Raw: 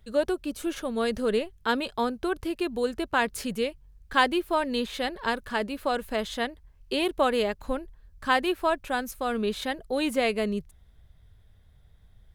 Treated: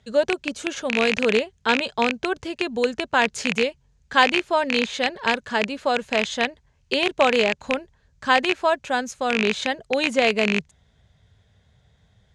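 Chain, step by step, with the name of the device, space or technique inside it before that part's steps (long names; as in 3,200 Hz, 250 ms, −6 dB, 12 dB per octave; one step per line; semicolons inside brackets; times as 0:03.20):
car door speaker with a rattle (loose part that buzzes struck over −34 dBFS, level −13 dBFS; loudspeaker in its box 110–7,500 Hz, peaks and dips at 320 Hz −8 dB, 1,200 Hz −4 dB, 6,700 Hz +6 dB)
level +6 dB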